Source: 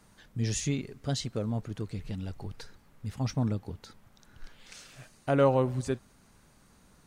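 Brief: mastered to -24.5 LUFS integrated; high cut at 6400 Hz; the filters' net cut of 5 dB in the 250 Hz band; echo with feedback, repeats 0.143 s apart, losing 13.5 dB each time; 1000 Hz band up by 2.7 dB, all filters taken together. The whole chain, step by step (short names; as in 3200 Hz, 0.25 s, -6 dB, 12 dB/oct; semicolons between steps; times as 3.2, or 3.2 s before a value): LPF 6400 Hz; bell 250 Hz -6.5 dB; bell 1000 Hz +4 dB; feedback echo 0.143 s, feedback 21%, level -13.5 dB; gain +8 dB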